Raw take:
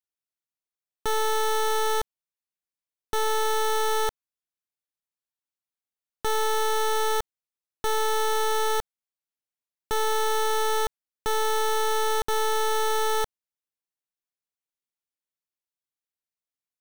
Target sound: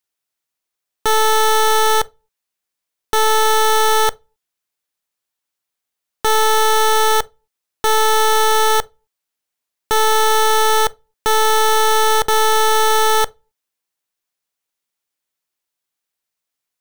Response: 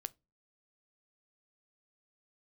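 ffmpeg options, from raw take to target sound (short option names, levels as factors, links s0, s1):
-filter_complex "[0:a]asplit=2[s0][s1];[1:a]atrim=start_sample=2205,lowshelf=f=230:g=-10[s2];[s1][s2]afir=irnorm=-1:irlink=0,volume=4.22[s3];[s0][s3]amix=inputs=2:normalize=0"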